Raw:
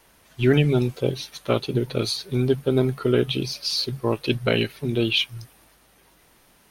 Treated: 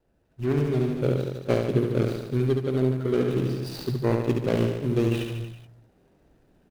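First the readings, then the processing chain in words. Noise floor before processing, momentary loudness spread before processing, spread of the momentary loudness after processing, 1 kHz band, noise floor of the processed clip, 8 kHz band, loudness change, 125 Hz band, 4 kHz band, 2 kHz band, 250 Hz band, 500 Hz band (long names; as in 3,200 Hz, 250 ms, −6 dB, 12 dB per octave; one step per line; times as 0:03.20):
−58 dBFS, 6 LU, 6 LU, −2.5 dB, −66 dBFS, −10.5 dB, −2.5 dB, −0.5 dB, −16.0 dB, −8.5 dB, −1.5 dB, −2.0 dB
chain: running median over 41 samples
reverse bouncing-ball delay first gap 70 ms, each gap 1.1×, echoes 5
speech leveller within 5 dB 0.5 s
level −2.5 dB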